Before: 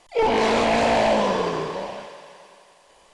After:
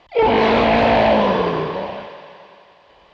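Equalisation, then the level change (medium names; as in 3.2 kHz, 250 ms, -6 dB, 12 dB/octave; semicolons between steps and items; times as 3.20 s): high-pass 62 Hz; low-pass 4 kHz 24 dB/octave; bass shelf 92 Hz +11.5 dB; +4.5 dB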